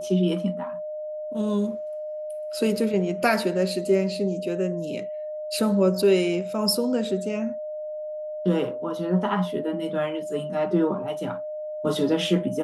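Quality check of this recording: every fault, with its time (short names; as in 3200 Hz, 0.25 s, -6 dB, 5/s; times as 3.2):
tone 610 Hz -30 dBFS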